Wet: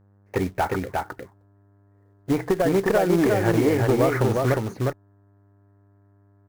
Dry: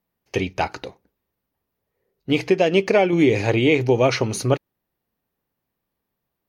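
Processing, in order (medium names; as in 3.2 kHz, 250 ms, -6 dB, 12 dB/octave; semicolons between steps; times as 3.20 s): FFT filter 470 Hz 0 dB, 1.8 kHz +7 dB, 3.1 kHz -20 dB; compression 10:1, threshold -17 dBFS, peak gain reduction 7.5 dB; touch-sensitive phaser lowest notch 150 Hz, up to 3.5 kHz, full sweep at -22 dBFS; one-sided clip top -18.5 dBFS; short-mantissa float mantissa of 2-bit; mains buzz 100 Hz, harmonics 17, -59 dBFS -8 dB/octave; on a send: delay 357 ms -3 dB; on the sum: trim +1.5 dB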